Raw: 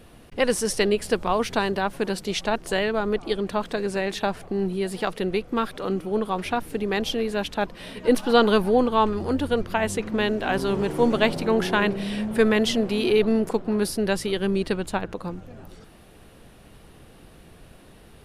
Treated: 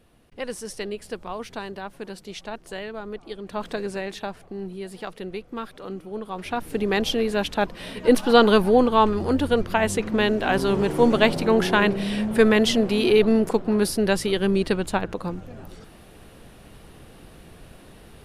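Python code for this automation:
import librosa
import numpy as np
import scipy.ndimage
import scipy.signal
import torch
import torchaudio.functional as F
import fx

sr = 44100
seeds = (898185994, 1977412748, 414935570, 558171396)

y = fx.gain(x, sr, db=fx.line((3.42, -10.0), (3.66, -1.0), (4.39, -8.0), (6.24, -8.0), (6.79, 2.5)))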